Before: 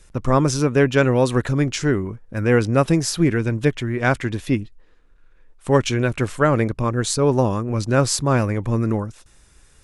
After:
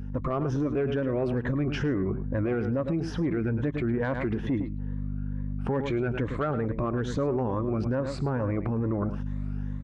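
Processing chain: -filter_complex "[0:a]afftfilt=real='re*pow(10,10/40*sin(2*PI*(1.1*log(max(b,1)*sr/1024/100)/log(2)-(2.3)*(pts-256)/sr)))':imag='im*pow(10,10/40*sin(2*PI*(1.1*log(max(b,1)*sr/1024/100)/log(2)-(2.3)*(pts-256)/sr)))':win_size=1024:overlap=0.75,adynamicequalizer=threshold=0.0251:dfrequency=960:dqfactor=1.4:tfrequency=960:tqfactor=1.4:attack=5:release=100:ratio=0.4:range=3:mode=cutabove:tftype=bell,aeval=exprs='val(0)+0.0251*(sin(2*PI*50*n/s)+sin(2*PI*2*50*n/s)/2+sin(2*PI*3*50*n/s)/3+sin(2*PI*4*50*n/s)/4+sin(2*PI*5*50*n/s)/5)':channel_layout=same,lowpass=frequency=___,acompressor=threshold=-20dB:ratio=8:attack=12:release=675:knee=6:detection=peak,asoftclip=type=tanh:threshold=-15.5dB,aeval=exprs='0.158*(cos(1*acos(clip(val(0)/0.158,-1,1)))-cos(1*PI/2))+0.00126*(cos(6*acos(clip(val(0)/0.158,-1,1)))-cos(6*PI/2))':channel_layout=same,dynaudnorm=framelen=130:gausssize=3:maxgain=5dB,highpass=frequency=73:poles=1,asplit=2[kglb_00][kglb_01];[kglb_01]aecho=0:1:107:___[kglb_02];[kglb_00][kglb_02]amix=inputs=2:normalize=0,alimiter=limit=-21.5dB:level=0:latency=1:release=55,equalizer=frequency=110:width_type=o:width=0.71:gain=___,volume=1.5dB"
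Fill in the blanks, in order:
1400, 0.224, -2.5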